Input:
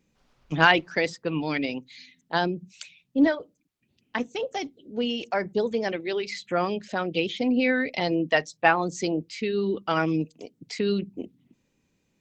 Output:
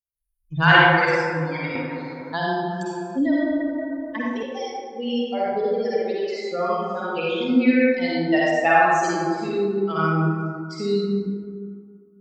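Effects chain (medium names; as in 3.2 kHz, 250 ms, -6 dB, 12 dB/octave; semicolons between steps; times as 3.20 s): expander on every frequency bin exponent 2; reverberation RT60 2.0 s, pre-delay 42 ms, DRR -8 dB; 1.75–4.43 s: three bands compressed up and down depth 70%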